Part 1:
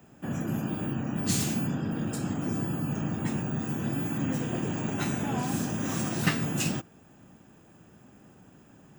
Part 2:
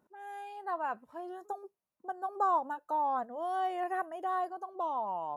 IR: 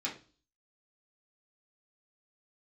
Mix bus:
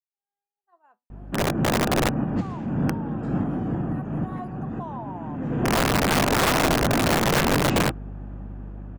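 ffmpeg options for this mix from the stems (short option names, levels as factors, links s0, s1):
-filter_complex "[0:a]aeval=exprs='val(0)+0.00562*(sin(2*PI*50*n/s)+sin(2*PI*2*50*n/s)/2+sin(2*PI*3*50*n/s)/3+sin(2*PI*4*50*n/s)/4+sin(2*PI*5*50*n/s)/5)':c=same,asoftclip=type=hard:threshold=0.0531,lowpass=1300,adelay=1100,volume=1.26[s0];[1:a]bandreject=f=123.6:t=h:w=4,bandreject=f=247.2:t=h:w=4,bandreject=f=370.8:t=h:w=4,bandreject=f=494.4:t=h:w=4,bandreject=f=618:t=h:w=4,bandreject=f=741.6:t=h:w=4,bandreject=f=865.2:t=h:w=4,bandreject=f=988.8:t=h:w=4,bandreject=f=1112.4:t=h:w=4,bandreject=f=1236:t=h:w=4,bandreject=f=1359.6:t=h:w=4,bandreject=f=1483.2:t=h:w=4,bandreject=f=1606.8:t=h:w=4,bandreject=f=1730.4:t=h:w=4,bandreject=f=1854:t=h:w=4,bandreject=f=1977.6:t=h:w=4,bandreject=f=2101.2:t=h:w=4,bandreject=f=2224.8:t=h:w=4,bandreject=f=2348.4:t=h:w=4,bandreject=f=2472:t=h:w=4,bandreject=f=2595.6:t=h:w=4,bandreject=f=2719.2:t=h:w=4,bandreject=f=2842.8:t=h:w=4,bandreject=f=2966.4:t=h:w=4,bandreject=f=3090:t=h:w=4,bandreject=f=3213.6:t=h:w=4,bandreject=f=3337.2:t=h:w=4,bandreject=f=3460.8:t=h:w=4,bandreject=f=3584.4:t=h:w=4,bandreject=f=3708:t=h:w=4,bandreject=f=3831.6:t=h:w=4,bandreject=f=3955.2:t=h:w=4,bandreject=f=4078.8:t=h:w=4,bandreject=f=4202.4:t=h:w=4,bandreject=f=4326:t=h:w=4,bandreject=f=4449.6:t=h:w=4,volume=0.266,afade=t=in:st=3.87:d=0.78:silence=0.316228,asplit=2[s1][s2];[s2]apad=whole_len=444724[s3];[s0][s3]sidechaincompress=threshold=0.00141:ratio=12:attack=9.2:release=390[s4];[s4][s1]amix=inputs=2:normalize=0,aeval=exprs='(mod(16.8*val(0)+1,2)-1)/16.8':c=same,dynaudnorm=f=220:g=11:m=2.82,agate=range=0.0224:threshold=0.00447:ratio=3:detection=peak"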